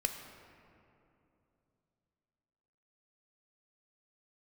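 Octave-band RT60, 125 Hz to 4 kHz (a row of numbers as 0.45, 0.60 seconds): 3.6, 3.4, 3.1, 2.6, 2.1, 1.4 seconds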